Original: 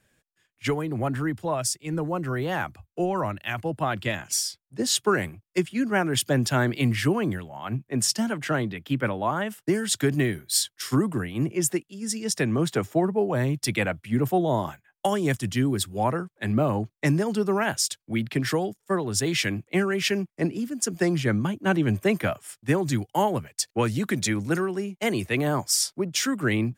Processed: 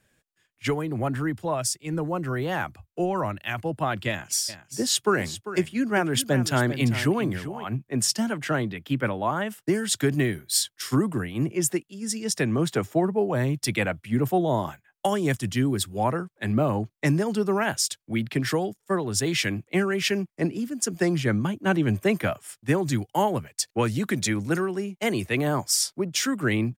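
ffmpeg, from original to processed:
ffmpeg -i in.wav -filter_complex "[0:a]asplit=3[link_01][link_02][link_03];[link_01]afade=type=out:start_time=4.48:duration=0.02[link_04];[link_02]aecho=1:1:396:0.237,afade=type=in:start_time=4.48:duration=0.02,afade=type=out:start_time=7.63:duration=0.02[link_05];[link_03]afade=type=in:start_time=7.63:duration=0.02[link_06];[link_04][link_05][link_06]amix=inputs=3:normalize=0" out.wav

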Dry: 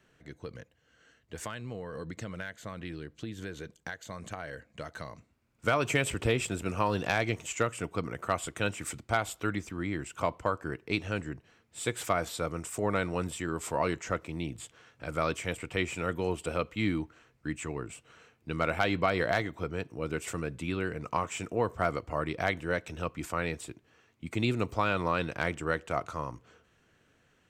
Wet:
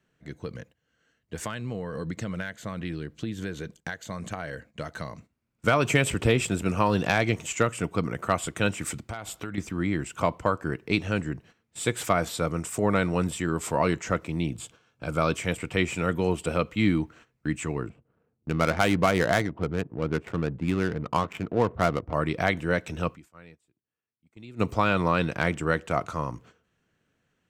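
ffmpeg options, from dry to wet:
ffmpeg -i in.wav -filter_complex "[0:a]asettb=1/sr,asplit=3[link_01][link_02][link_03];[link_01]atrim=end=9.014[link_04];[link_02]atrim=start=9.01:end=9.58,asetpts=PTS-STARTPTS,afade=type=in:duration=0.004:curve=qsin,afade=type=out:start_time=0.566:duration=0.004:curve=qsin,acompressor=threshold=-36dB:ratio=6:attack=3.2:release=140:knee=1:detection=peak[link_05];[link_03]atrim=start=9.576[link_06];[link_04][link_05]acrossfade=duration=0.004:curve1=hsin:curve2=qsin[link_07];[link_07][link_06]acrossfade=duration=0.004:curve1=qsin:curve2=hsin,asettb=1/sr,asplit=3[link_08][link_09][link_10];[link_08]atrim=end=14.524[link_11];[link_09]atrim=start=14.52:end=15.34,asetpts=PTS-STARTPTS,afade=type=in:duration=0.004:curve=qsin,afade=type=out:start_time=0.816:duration=0.004:curve=qsin,bandreject=frequency=1900:width=5.2[link_12];[link_10]atrim=start=15.336[link_13];[link_11][link_12]acrossfade=duration=0.004:curve1=hsin:curve2=qsin[link_14];[link_14][link_13]acrossfade=duration=0.004:curve1=qsin:curve2=hsin,asettb=1/sr,asplit=3[link_15][link_16][link_17];[link_15]atrim=end=17.894[link_18];[link_16]atrim=start=17.89:end=22.14,asetpts=PTS-STARTPTS,afade=type=in:duration=0.004:curve=qsin,afade=type=out:start_time=4.246:duration=0.004:curve=qsin,adynamicsmooth=sensitivity=6.5:basefreq=560[link_19];[link_17]atrim=start=22.136[link_20];[link_18][link_19]acrossfade=duration=0.004:curve1=hsin:curve2=qsin[link_21];[link_21][link_20]acrossfade=duration=0.004:curve1=qsin:curve2=hsin,asplit=3[link_22][link_23][link_24];[link_22]atrim=end=23.34,asetpts=PTS-STARTPTS,afade=type=out:start_time=23.14:duration=0.2:curve=exp:silence=0.0707946[link_25];[link_23]atrim=start=23.34:end=24.41,asetpts=PTS-STARTPTS,volume=-23dB[link_26];[link_24]atrim=start=24.41,asetpts=PTS-STARTPTS,afade=type=in:duration=0.2:curve=exp:silence=0.0707946[link_27];[link_25][link_26][link_27]concat=n=3:v=0:a=1,equalizer=frequency=180:width=1.4:gain=5,agate=range=-12dB:threshold=-54dB:ratio=16:detection=peak,volume=4.5dB" out.wav

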